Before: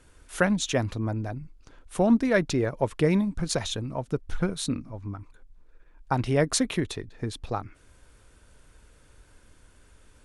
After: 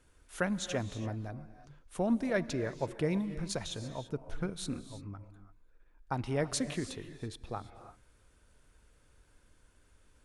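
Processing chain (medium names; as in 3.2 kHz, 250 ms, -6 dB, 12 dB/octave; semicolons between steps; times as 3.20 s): gated-style reverb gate 360 ms rising, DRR 11.5 dB; trim -9 dB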